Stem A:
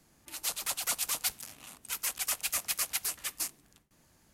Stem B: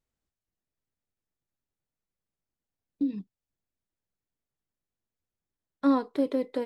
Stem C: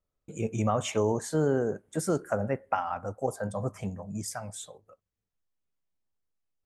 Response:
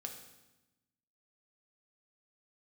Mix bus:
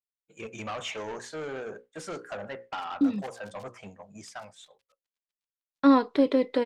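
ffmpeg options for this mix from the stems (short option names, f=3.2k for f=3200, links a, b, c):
-filter_complex "[0:a]acompressor=threshold=-55dB:ratio=1.5,acrusher=bits=4:mix=0:aa=0.000001,adelay=2350,volume=-14.5dB[a];[1:a]acontrast=88,volume=-3.5dB[b];[2:a]bandreject=f=60:t=h:w=6,bandreject=f=120:t=h:w=6,bandreject=f=180:t=h:w=6,bandreject=f=240:t=h:w=6,bandreject=f=300:t=h:w=6,bandreject=f=360:t=h:w=6,bandreject=f=420:t=h:w=6,bandreject=f=480:t=h:w=6,bandreject=f=540:t=h:w=6,asplit=2[c][d];[d]highpass=f=720:p=1,volume=22dB,asoftclip=type=tanh:threshold=-13dB[e];[c][e]amix=inputs=2:normalize=0,lowpass=f=7.5k:p=1,volume=-6dB,volume=-16dB[f];[a][b][f]amix=inputs=3:normalize=0,aemphasis=mode=reproduction:type=50fm,agate=range=-33dB:threshold=-44dB:ratio=3:detection=peak,equalizer=f=3.6k:w=0.46:g=8.5"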